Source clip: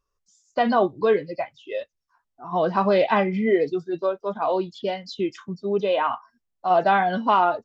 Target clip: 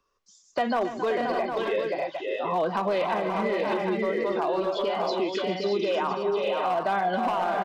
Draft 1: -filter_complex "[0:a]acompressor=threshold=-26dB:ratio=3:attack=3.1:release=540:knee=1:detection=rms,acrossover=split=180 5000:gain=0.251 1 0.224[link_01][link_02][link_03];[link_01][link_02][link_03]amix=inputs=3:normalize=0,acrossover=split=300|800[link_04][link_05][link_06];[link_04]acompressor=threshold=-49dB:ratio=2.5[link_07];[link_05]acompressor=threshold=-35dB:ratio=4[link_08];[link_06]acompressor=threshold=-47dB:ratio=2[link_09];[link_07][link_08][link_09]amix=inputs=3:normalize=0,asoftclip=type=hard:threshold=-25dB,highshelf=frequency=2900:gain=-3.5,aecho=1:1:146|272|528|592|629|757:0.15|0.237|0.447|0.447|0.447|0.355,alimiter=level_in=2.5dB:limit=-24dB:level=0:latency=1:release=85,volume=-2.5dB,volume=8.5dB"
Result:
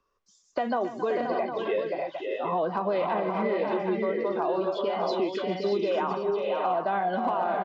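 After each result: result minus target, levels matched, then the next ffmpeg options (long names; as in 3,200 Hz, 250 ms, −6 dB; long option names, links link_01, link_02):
downward compressor: peak gain reduction +11 dB; 8,000 Hz band −7.0 dB
-filter_complex "[0:a]acrossover=split=180 5000:gain=0.251 1 0.224[link_01][link_02][link_03];[link_01][link_02][link_03]amix=inputs=3:normalize=0,acrossover=split=300|800[link_04][link_05][link_06];[link_04]acompressor=threshold=-49dB:ratio=2.5[link_07];[link_05]acompressor=threshold=-35dB:ratio=4[link_08];[link_06]acompressor=threshold=-47dB:ratio=2[link_09];[link_07][link_08][link_09]amix=inputs=3:normalize=0,asoftclip=type=hard:threshold=-25dB,highshelf=frequency=2900:gain=-3.5,aecho=1:1:146|272|528|592|629|757:0.15|0.237|0.447|0.447|0.447|0.355,alimiter=level_in=2.5dB:limit=-24dB:level=0:latency=1:release=85,volume=-2.5dB,volume=8.5dB"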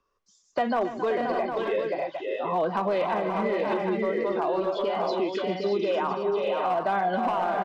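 8,000 Hz band −5.5 dB
-filter_complex "[0:a]acrossover=split=180 5000:gain=0.251 1 0.224[link_01][link_02][link_03];[link_01][link_02][link_03]amix=inputs=3:normalize=0,acrossover=split=300|800[link_04][link_05][link_06];[link_04]acompressor=threshold=-49dB:ratio=2.5[link_07];[link_05]acompressor=threshold=-35dB:ratio=4[link_08];[link_06]acompressor=threshold=-47dB:ratio=2[link_09];[link_07][link_08][link_09]amix=inputs=3:normalize=0,asoftclip=type=hard:threshold=-25dB,highshelf=frequency=2900:gain=3.5,aecho=1:1:146|272|528|592|629|757:0.15|0.237|0.447|0.447|0.447|0.355,alimiter=level_in=2.5dB:limit=-24dB:level=0:latency=1:release=85,volume=-2.5dB,volume=8.5dB"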